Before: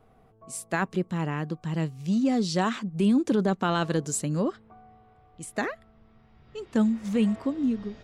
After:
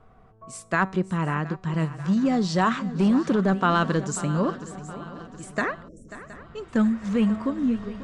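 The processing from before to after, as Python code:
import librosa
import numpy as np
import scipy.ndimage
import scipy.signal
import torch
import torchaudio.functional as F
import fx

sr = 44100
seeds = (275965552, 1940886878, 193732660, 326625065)

p1 = scipy.signal.sosfilt(scipy.signal.butter(4, 8600.0, 'lowpass', fs=sr, output='sos'), x)
p2 = fx.low_shelf(p1, sr, hz=140.0, db=9.5)
p3 = fx.notch(p2, sr, hz=820.0, q=12.0)
p4 = fx.comb_fb(p3, sr, f0_hz=190.0, decay_s=0.49, harmonics='all', damping=0.0, mix_pct=40)
p5 = p4 + fx.echo_swing(p4, sr, ms=719, ratio=3, feedback_pct=48, wet_db=-15.5, dry=0)
p6 = fx.spec_erase(p5, sr, start_s=5.88, length_s=0.21, low_hz=650.0, high_hz=5300.0)
p7 = 10.0 ** (-19.5 / 20.0) * (np.abs((p6 / 10.0 ** (-19.5 / 20.0) + 3.0) % 4.0 - 2.0) - 1.0)
p8 = p6 + F.gain(torch.from_numpy(p7), -8.0).numpy()
y = fx.peak_eq(p8, sr, hz=1200.0, db=9.0, octaves=1.5)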